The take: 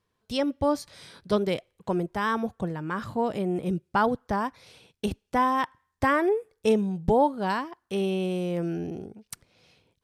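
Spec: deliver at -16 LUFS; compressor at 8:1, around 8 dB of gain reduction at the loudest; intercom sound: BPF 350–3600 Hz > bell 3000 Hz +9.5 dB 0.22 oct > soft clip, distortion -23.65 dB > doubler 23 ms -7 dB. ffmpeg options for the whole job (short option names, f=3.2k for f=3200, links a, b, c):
-filter_complex "[0:a]acompressor=threshold=-25dB:ratio=8,highpass=350,lowpass=3.6k,equalizer=f=3k:t=o:w=0.22:g=9.5,asoftclip=threshold=-18.5dB,asplit=2[a][b];[b]adelay=23,volume=-7dB[c];[a][c]amix=inputs=2:normalize=0,volume=18dB"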